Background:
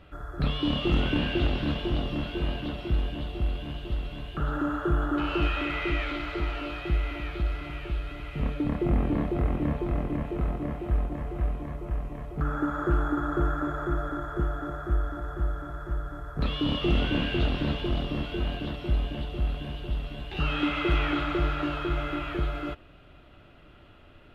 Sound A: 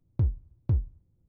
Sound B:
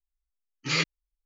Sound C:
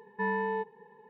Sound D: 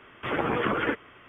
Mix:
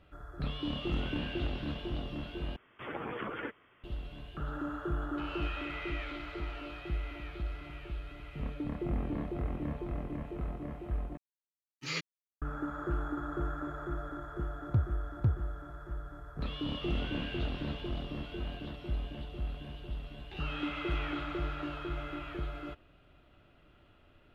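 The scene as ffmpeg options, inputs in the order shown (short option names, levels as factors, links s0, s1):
-filter_complex "[0:a]volume=0.355[s0];[2:a]aeval=exprs='sgn(val(0))*max(abs(val(0))-0.00224,0)':c=same[s1];[1:a]highpass=85[s2];[s0]asplit=3[s3][s4][s5];[s3]atrim=end=2.564[s6];[4:a]atrim=end=1.28,asetpts=PTS-STARTPTS,volume=0.237[s7];[s4]atrim=start=3.836:end=11.174[s8];[s1]atrim=end=1.25,asetpts=PTS-STARTPTS,volume=0.299[s9];[s5]atrim=start=12.416[s10];[s2]atrim=end=1.28,asetpts=PTS-STARTPTS,volume=0.891,afade=t=in:d=0.004:c=hsin,afade=t=out:st=1.276:d=0.004:c=hsin,adelay=14550[s11];[s6][s7]acrossfade=d=0.004:c1=hsin:c2=hsin[s12];[s12][s8]acrossfade=d=0.004:c1=hsin:c2=hsin[s13];[s13][s9]acrossfade=d=0.004:c1=hsin:c2=hsin[s14];[s14][s10]acrossfade=d=0.004:c1=hsin:c2=hsin[s15];[s15][s11]amix=inputs=2:normalize=0"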